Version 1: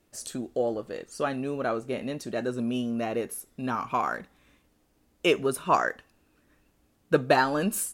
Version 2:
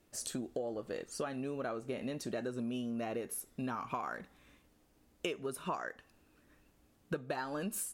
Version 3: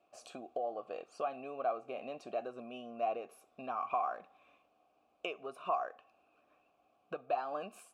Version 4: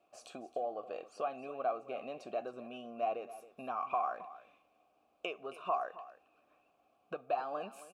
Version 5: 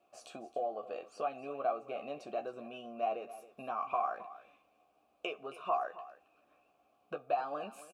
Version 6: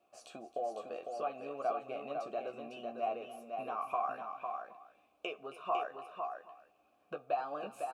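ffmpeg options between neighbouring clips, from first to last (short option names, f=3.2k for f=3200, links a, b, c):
-af "acompressor=threshold=-33dB:ratio=10,volume=-1.5dB"
-filter_complex "[0:a]asplit=3[a][b][c];[a]bandpass=f=730:t=q:w=8,volume=0dB[d];[b]bandpass=f=1.09k:t=q:w=8,volume=-6dB[e];[c]bandpass=f=2.44k:t=q:w=8,volume=-9dB[f];[d][e][f]amix=inputs=3:normalize=0,volume=11.5dB"
-af "aecho=1:1:270:0.158"
-filter_complex "[0:a]asplit=2[a][b];[b]adelay=14,volume=-7dB[c];[a][c]amix=inputs=2:normalize=0"
-af "aecho=1:1:503:0.531,volume=-1.5dB"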